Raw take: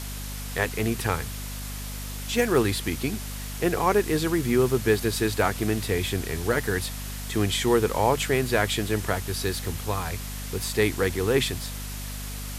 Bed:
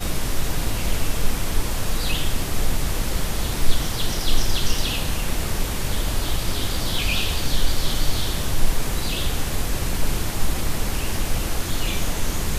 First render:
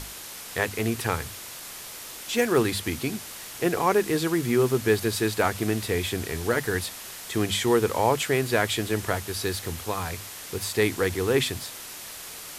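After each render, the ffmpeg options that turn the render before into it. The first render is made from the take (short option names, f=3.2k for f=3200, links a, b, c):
-af "bandreject=f=50:t=h:w=6,bandreject=f=100:t=h:w=6,bandreject=f=150:t=h:w=6,bandreject=f=200:t=h:w=6,bandreject=f=250:t=h:w=6"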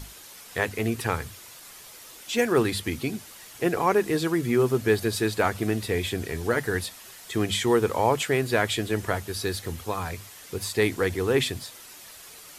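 -af "afftdn=nr=8:nf=-40"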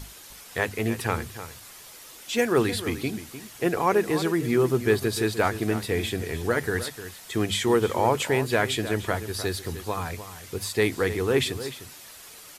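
-filter_complex "[0:a]asplit=2[a][b];[b]adelay=303.2,volume=-12dB,highshelf=f=4k:g=-6.82[c];[a][c]amix=inputs=2:normalize=0"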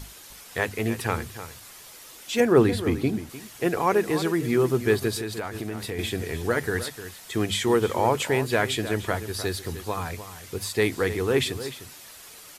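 -filter_complex "[0:a]asettb=1/sr,asplit=3[a][b][c];[a]atrim=end=2.404[d];[b]atrim=start=2.4:end=3.3,asetpts=PTS-STARTPTS,afade=t=in:d=0.004:c=qsin,afade=t=out:st=0.896:d=0.004:c=qsin,tiltshelf=f=1.4k:g=5.5[e];[c]atrim=start=3.296[f];[d][e]acrossfade=d=0.004:c1=hsin:c2=qsin[g];[g][f]acrossfade=d=0.004:c1=qsin:c2=hsin,asettb=1/sr,asplit=3[h][i][j];[h]atrim=end=5.164[k];[i]atrim=start=5.16:end=5.99,asetpts=PTS-STARTPTS,afade=t=in:d=0.004:c=qsin,afade=t=out:st=0.826:d=0.004:c=qsin,acompressor=threshold=-27dB:ratio=6:attack=3.2:release=140:knee=1:detection=peak[l];[j]atrim=start=5.986[m];[k][l]acrossfade=d=0.004:c1=hsin:c2=qsin[n];[n][m]acrossfade=d=0.004:c1=qsin:c2=hsin"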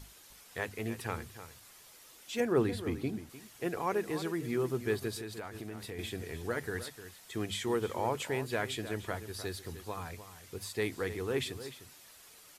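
-af "volume=-10.5dB"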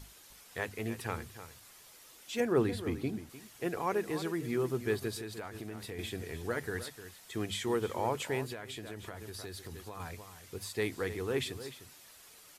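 -filter_complex "[0:a]asettb=1/sr,asplit=3[a][b][c];[a]atrim=end=8.524[d];[b]atrim=start=8.52:end=10,asetpts=PTS-STARTPTS,afade=t=in:d=0.004:c=qsin,afade=t=out:st=1.476:d=0.004:c=qsin,acompressor=threshold=-39dB:ratio=5:attack=3.2:release=140:knee=1:detection=peak[e];[c]atrim=start=9.996[f];[d][e]acrossfade=d=0.004:c1=hsin:c2=qsin[g];[g][f]acrossfade=d=0.004:c1=qsin:c2=hsin"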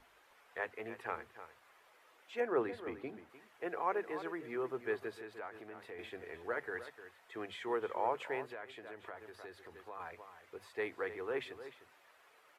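-filter_complex "[0:a]acrossover=split=400 2400:gain=0.1 1 0.0794[a][b][c];[a][b][c]amix=inputs=3:normalize=0,bandreject=f=50:t=h:w=6,bandreject=f=100:t=h:w=6,bandreject=f=150:t=h:w=6,bandreject=f=200:t=h:w=6"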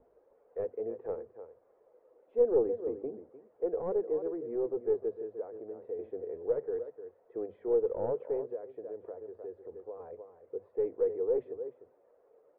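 -af "aeval=exprs='clip(val(0),-1,0.0119)':c=same,lowpass=f=490:t=q:w=4.9"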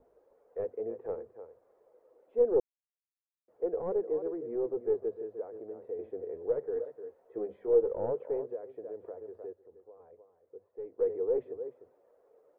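-filter_complex "[0:a]asettb=1/sr,asplit=3[a][b][c];[a]atrim=end=6.754[d];[b]atrim=start=6.75:end=7.91,asetpts=PTS-STARTPTS,afade=t=in:d=0.004:c=qsin,afade=t=out:st=1.156:d=0.004:c=qsin,asplit=2[e][f];[f]adelay=15,volume=-3.5dB[g];[e][g]amix=inputs=2:normalize=0,atrim=end_sample=51156[h];[c]atrim=start=7.906[i];[d][h]acrossfade=d=0.004:c1=hsin:c2=qsin[j];[j][i]acrossfade=d=0.004:c1=qsin:c2=hsin,asplit=5[k][l][m][n][o];[k]atrim=end=2.6,asetpts=PTS-STARTPTS,afade=t=out:st=2.596:d=0.004:c=hsin[p];[l]atrim=start=2.6:end=3.48,asetpts=PTS-STARTPTS,volume=0[q];[m]atrim=start=3.48:end=9.532,asetpts=PTS-STARTPTS,afade=t=in:d=0.004:c=hsin[r];[n]atrim=start=9.528:end=10.992,asetpts=PTS-STARTPTS,volume=-10.5dB[s];[o]atrim=start=10.988[t];[p][q][r]concat=n=3:v=0:a=1[u];[u][s]acrossfade=d=0.004:c1=hsin:c2=hsin[v];[v][t]acrossfade=d=0.004:c1=hsin:c2=hsin"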